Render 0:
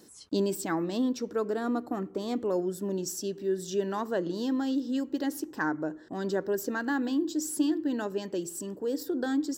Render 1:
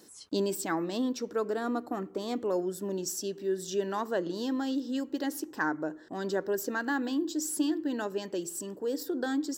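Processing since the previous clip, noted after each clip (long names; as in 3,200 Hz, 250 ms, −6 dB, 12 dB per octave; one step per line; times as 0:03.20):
low-shelf EQ 270 Hz −7 dB
level +1 dB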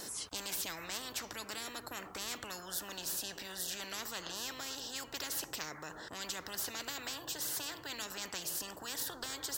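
every bin compressed towards the loudest bin 10 to 1
level −6 dB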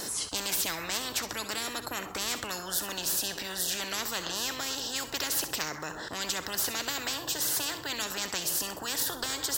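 delay with a high-pass on its return 65 ms, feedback 32%, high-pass 2,100 Hz, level −11 dB
level +8.5 dB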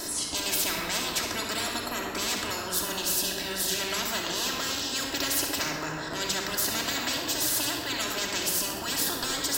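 convolution reverb RT60 2.1 s, pre-delay 3 ms, DRR −2 dB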